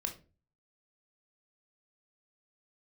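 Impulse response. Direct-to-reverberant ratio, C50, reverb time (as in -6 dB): 4.0 dB, 12.0 dB, 0.35 s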